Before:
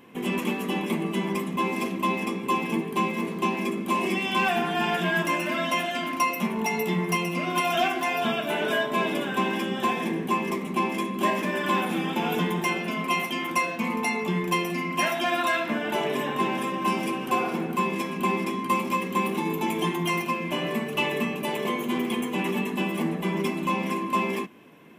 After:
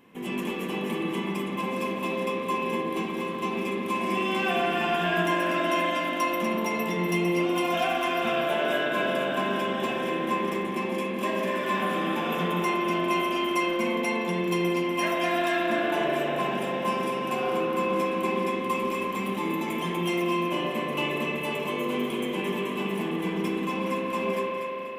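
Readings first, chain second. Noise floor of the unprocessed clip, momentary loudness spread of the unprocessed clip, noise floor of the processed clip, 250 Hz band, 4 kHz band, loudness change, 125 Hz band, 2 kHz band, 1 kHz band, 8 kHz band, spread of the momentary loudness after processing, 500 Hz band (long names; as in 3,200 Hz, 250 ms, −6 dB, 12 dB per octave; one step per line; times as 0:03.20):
−33 dBFS, 3 LU, −32 dBFS, −1.0 dB, −1.5 dB, −1.0 dB, −2.5 dB, −1.5 dB, −1.5 dB, −4.5 dB, 4 LU, +2.0 dB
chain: delay that swaps between a low-pass and a high-pass 122 ms, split 910 Hz, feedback 62%, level −3 dB
spring reverb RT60 3.9 s, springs 40 ms, chirp 20 ms, DRR −2 dB
level −5.5 dB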